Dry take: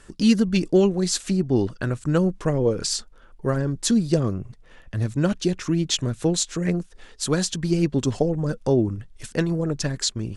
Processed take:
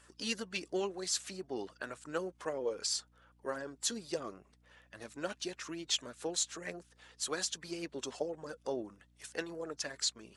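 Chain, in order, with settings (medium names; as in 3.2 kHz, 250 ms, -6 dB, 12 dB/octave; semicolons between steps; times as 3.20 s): coarse spectral quantiser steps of 15 dB; high-pass 590 Hz 12 dB/octave; hum 60 Hz, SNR 28 dB; trim -8 dB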